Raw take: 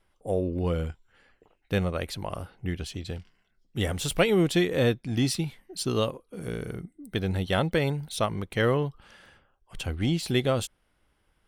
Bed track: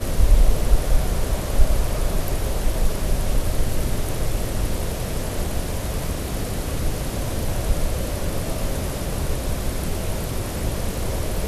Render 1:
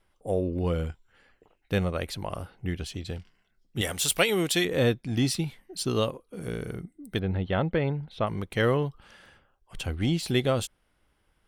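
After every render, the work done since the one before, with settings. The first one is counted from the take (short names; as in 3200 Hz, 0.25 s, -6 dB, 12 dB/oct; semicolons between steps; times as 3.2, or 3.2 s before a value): 3.81–4.65 tilt +2.5 dB/oct; 7.19–8.27 air absorption 370 m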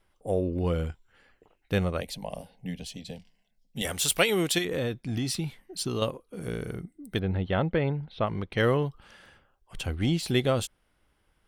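2.01–3.85 fixed phaser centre 350 Hz, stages 6; 4.58–6.02 compressor, threshold -25 dBFS; 7.66–8.58 polynomial smoothing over 15 samples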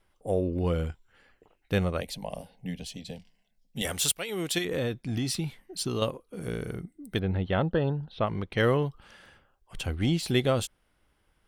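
4.12–4.71 fade in, from -23 dB; 7.62–8.13 Butterworth band-stop 2200 Hz, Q 2.5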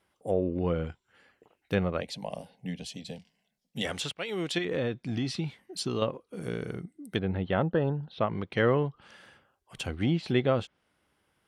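HPF 110 Hz 12 dB/oct; treble ducked by the level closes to 2500 Hz, closed at -24 dBFS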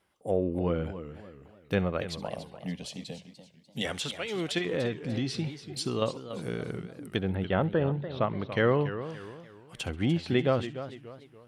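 thin delay 67 ms, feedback 37%, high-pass 2000 Hz, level -18 dB; warbling echo 0.291 s, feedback 38%, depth 169 cents, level -12 dB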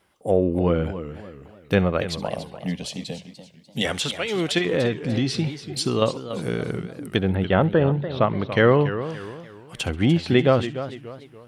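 gain +8 dB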